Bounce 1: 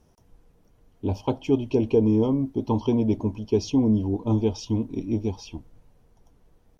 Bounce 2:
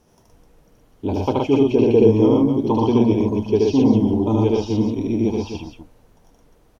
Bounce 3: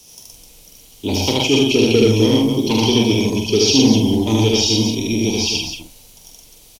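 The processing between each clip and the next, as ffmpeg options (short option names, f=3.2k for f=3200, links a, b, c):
-filter_complex "[0:a]lowshelf=f=170:g=-8.5,acrossover=split=3400[a][b];[b]acompressor=threshold=-51dB:ratio=4:attack=1:release=60[c];[a][c]amix=inputs=2:normalize=0,aecho=1:1:75.8|119.5|256.6:0.891|0.794|0.447,volume=5.5dB"
-filter_complex "[0:a]acrossover=split=190|500|2800[a][b][c][d];[c]asoftclip=type=tanh:threshold=-25dB[e];[a][b][e][d]amix=inputs=4:normalize=0,aexciter=amount=6:drive=8.5:freq=2.4k,asplit=2[f][g];[g]adelay=45,volume=-6.5dB[h];[f][h]amix=inputs=2:normalize=0,volume=1dB"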